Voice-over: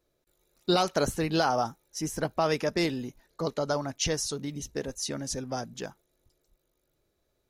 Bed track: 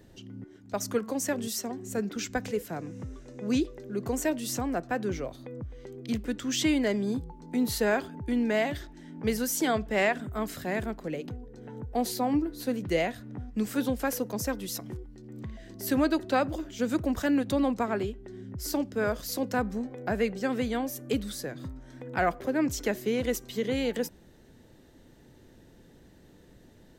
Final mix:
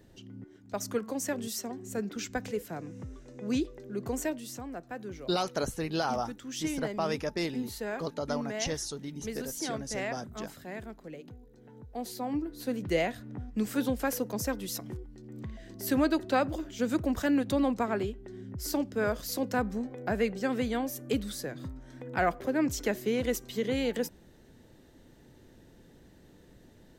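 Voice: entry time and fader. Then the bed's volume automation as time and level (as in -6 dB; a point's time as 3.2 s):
4.60 s, -5.0 dB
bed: 4.22 s -3 dB
4.53 s -10 dB
11.89 s -10 dB
12.89 s -1 dB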